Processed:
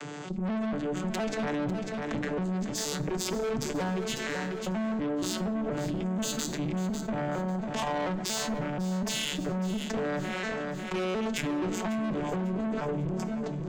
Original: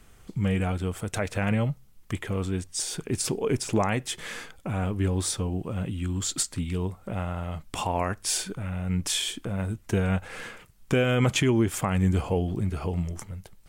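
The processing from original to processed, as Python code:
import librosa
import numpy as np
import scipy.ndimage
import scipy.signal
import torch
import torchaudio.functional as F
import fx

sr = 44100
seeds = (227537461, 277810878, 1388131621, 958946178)

p1 = fx.vocoder_arp(x, sr, chord='major triad', root=50, every_ms=237)
p2 = scipy.signal.sosfilt(scipy.signal.butter(2, 200.0, 'highpass', fs=sr, output='sos'), p1)
p3 = fx.high_shelf(p2, sr, hz=4500.0, db=3.5)
p4 = fx.hum_notches(p3, sr, base_hz=50, count=6)
p5 = fx.rider(p4, sr, range_db=4, speed_s=0.5)
p6 = p4 + (p5 * librosa.db_to_amplitude(2.5))
p7 = fx.tube_stage(p6, sr, drive_db=30.0, bias=0.65)
p8 = fx.echo_feedback(p7, sr, ms=547, feedback_pct=33, wet_db=-12.0)
p9 = fx.rev_plate(p8, sr, seeds[0], rt60_s=0.79, hf_ratio=0.8, predelay_ms=0, drr_db=13.0)
y = fx.env_flatten(p9, sr, amount_pct=70)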